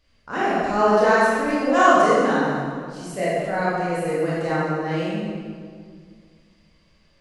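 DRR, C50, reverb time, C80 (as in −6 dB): −9.0 dB, −3.5 dB, 2.0 s, −0.5 dB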